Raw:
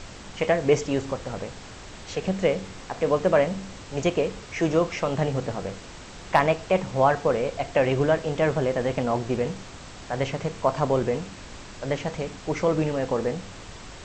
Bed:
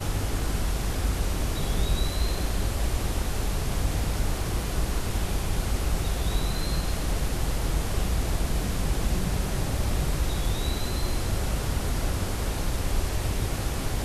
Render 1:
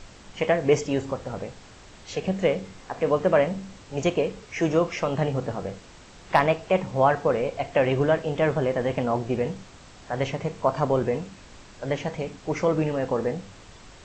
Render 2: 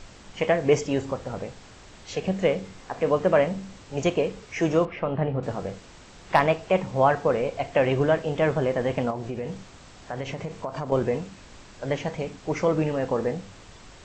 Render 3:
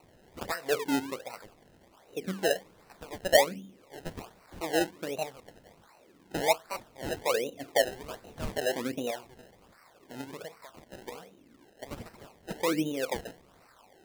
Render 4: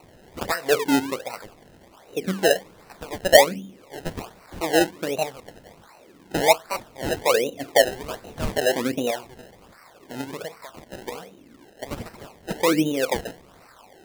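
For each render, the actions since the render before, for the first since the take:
noise print and reduce 6 dB
4.85–5.43 s: distance through air 450 m; 9.10–10.92 s: compression, threshold -27 dBFS
wah-wah 0.76 Hz 270–3400 Hz, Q 3.2; decimation with a swept rate 26×, swing 100% 1.3 Hz
trim +8.5 dB

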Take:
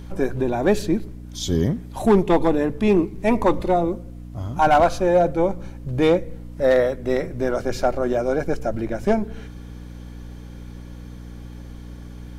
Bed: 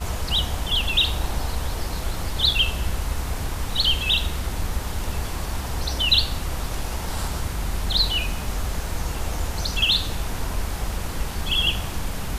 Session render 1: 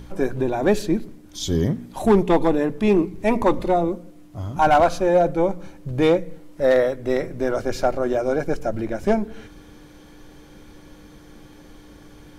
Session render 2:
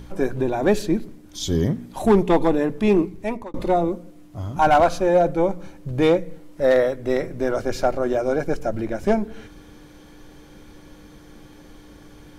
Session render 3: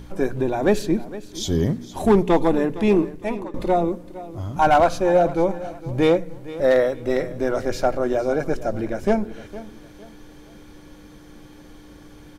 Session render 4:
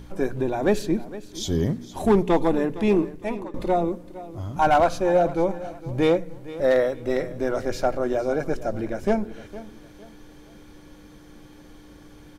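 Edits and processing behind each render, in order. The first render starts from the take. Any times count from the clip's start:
de-hum 60 Hz, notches 4
3.00–3.54 s: fade out
feedback delay 460 ms, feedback 34%, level -16.5 dB
trim -2.5 dB

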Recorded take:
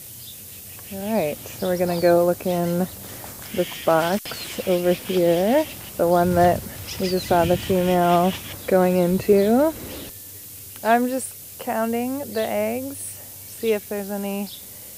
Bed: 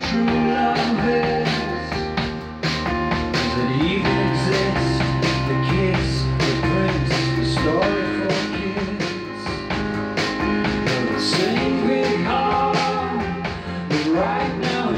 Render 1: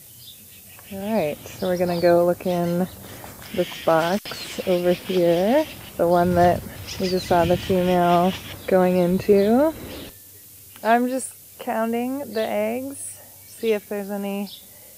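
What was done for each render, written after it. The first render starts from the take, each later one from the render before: noise print and reduce 6 dB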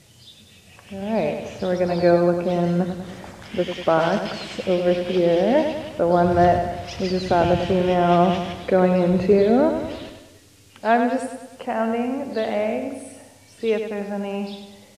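distance through air 85 m; feedback delay 98 ms, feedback 54%, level -7.5 dB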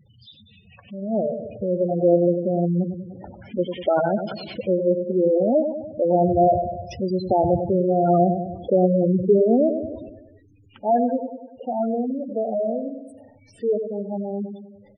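spectral gate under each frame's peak -10 dB strong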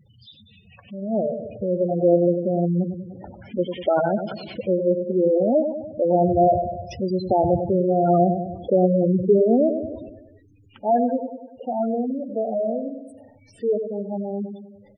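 4.12–5.02 s: distance through air 110 m; 12.20–12.63 s: hum notches 60/120/180/240/300/360/420/480/540/600 Hz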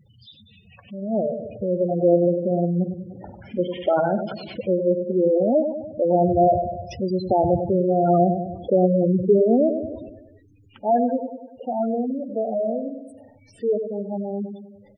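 2.19–4.23 s: flutter echo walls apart 8.6 m, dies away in 0.25 s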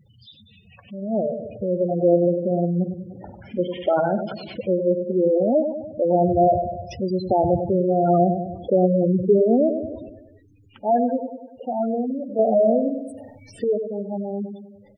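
12.39–13.64 s: gain +7 dB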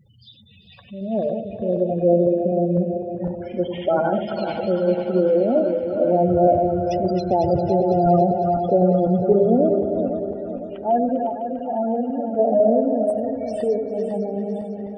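backward echo that repeats 252 ms, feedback 67%, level -6 dB; band-passed feedback delay 398 ms, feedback 84%, band-pass 1.6 kHz, level -10 dB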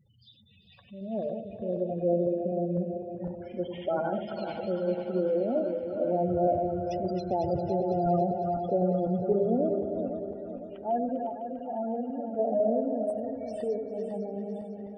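trim -9.5 dB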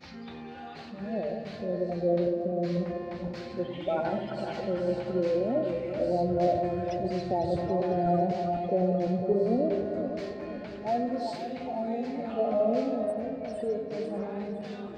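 add bed -24 dB

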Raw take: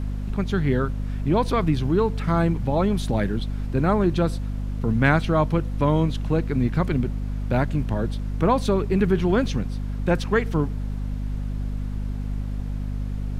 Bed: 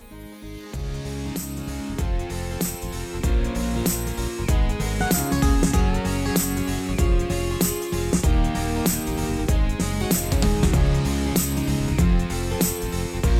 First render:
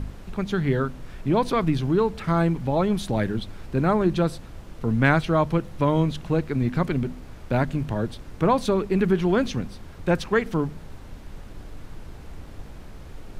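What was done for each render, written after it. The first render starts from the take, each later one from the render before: de-hum 50 Hz, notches 5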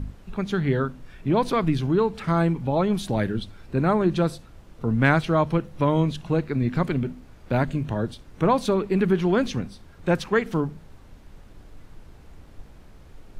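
noise print and reduce 7 dB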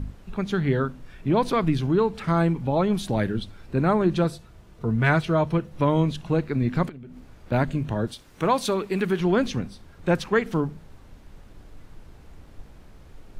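4.24–5.72 s: comb of notches 270 Hz; 6.89–7.52 s: compression 16:1, threshold -37 dBFS; 8.07–9.20 s: tilt EQ +2 dB/octave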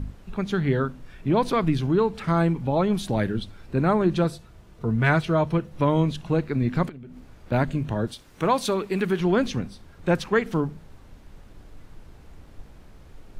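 no audible change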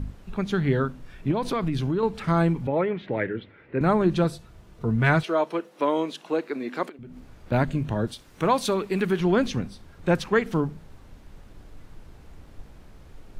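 1.31–2.03 s: compression, threshold -21 dBFS; 2.67–3.81 s: cabinet simulation 170–2600 Hz, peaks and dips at 210 Hz -9 dB, 470 Hz +4 dB, 740 Hz -6 dB, 1.1 kHz -5 dB, 2 kHz +9 dB; 5.23–6.99 s: high-pass 300 Hz 24 dB/octave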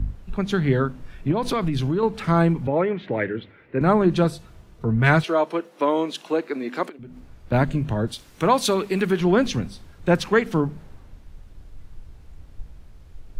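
in parallel at 0 dB: compression, threshold -29 dBFS, peak gain reduction 13 dB; on the sum: three bands expanded up and down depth 40%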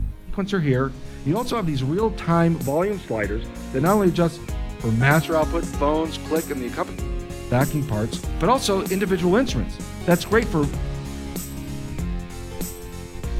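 add bed -9 dB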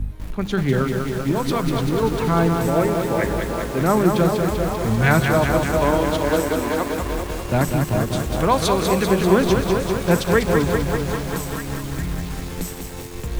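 repeats whose band climbs or falls 409 ms, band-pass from 530 Hz, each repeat 0.7 oct, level -5.5 dB; bit-crushed delay 195 ms, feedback 80%, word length 6-bit, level -4.5 dB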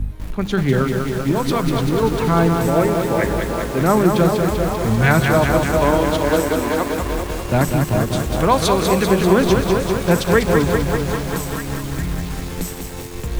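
trim +2.5 dB; peak limiter -2 dBFS, peak gain reduction 2.5 dB

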